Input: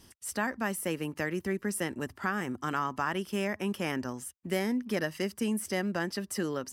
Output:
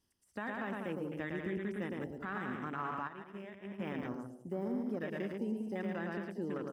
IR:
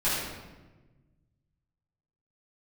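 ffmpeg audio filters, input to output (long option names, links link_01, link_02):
-filter_complex "[0:a]deesser=1,asplit=2[link_01][link_02];[link_02]aecho=0:1:110|192.5|254.4|300.8|335.6:0.631|0.398|0.251|0.158|0.1[link_03];[link_01][link_03]amix=inputs=2:normalize=0,afwtdn=0.0126,alimiter=limit=-22dB:level=0:latency=1:release=29,asplit=3[link_04][link_05][link_06];[link_04]afade=type=out:start_time=3.07:duration=0.02[link_07];[link_05]agate=range=-33dB:threshold=-23dB:ratio=3:detection=peak,afade=type=in:start_time=3.07:duration=0.02,afade=type=out:start_time=3.78:duration=0.02[link_08];[link_06]afade=type=in:start_time=3.78:duration=0.02[link_09];[link_07][link_08][link_09]amix=inputs=3:normalize=0,volume=-6.5dB"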